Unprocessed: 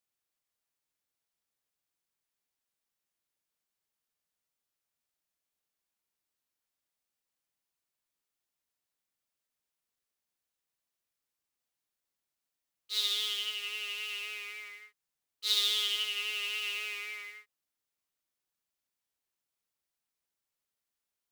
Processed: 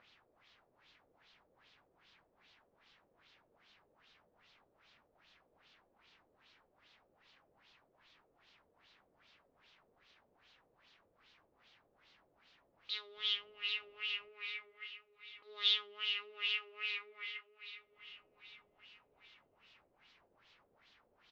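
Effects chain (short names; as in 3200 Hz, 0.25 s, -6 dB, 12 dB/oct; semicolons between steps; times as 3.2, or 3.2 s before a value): 13.15–14.28 added noise white -58 dBFS; LPF 5700 Hz 24 dB/oct; upward compressor, threshold -41 dBFS; feedback echo 0.721 s, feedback 47%, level -13 dB; LFO low-pass sine 2.5 Hz 480–3800 Hz; gain -6 dB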